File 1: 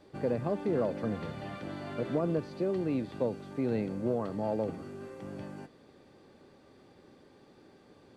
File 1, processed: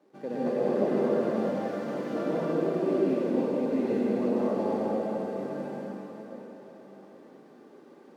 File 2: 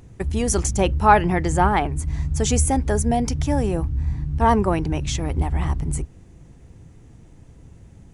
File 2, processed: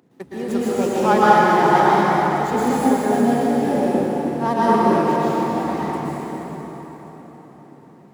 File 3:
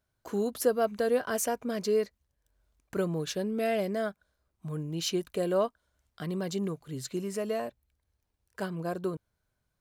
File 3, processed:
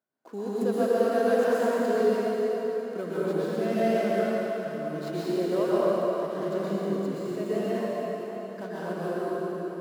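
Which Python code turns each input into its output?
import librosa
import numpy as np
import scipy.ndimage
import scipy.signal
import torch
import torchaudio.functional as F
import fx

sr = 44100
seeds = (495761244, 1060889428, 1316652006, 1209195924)

y = scipy.signal.medfilt(x, 15)
y = scipy.signal.sosfilt(scipy.signal.butter(4, 190.0, 'highpass', fs=sr, output='sos'), y)
y = fx.rev_plate(y, sr, seeds[0], rt60_s=4.7, hf_ratio=0.75, predelay_ms=105, drr_db=-10.0)
y = y * librosa.db_to_amplitude(-5.0)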